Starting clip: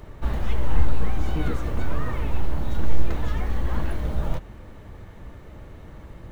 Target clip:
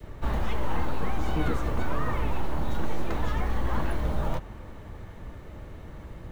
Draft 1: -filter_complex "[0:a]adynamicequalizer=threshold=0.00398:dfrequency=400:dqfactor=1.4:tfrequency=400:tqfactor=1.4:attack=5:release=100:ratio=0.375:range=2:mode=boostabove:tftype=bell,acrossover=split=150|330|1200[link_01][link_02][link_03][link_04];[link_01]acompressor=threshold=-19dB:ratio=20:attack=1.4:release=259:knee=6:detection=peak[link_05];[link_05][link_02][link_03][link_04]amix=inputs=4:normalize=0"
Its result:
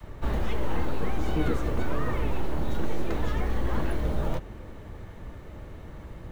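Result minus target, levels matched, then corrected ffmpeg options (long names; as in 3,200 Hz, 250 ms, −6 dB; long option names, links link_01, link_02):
1,000 Hz band −3.0 dB
-filter_complex "[0:a]adynamicequalizer=threshold=0.00398:dfrequency=970:dqfactor=1.4:tfrequency=970:tqfactor=1.4:attack=5:release=100:ratio=0.375:range=2:mode=boostabove:tftype=bell,acrossover=split=150|330|1200[link_01][link_02][link_03][link_04];[link_01]acompressor=threshold=-19dB:ratio=20:attack=1.4:release=259:knee=6:detection=peak[link_05];[link_05][link_02][link_03][link_04]amix=inputs=4:normalize=0"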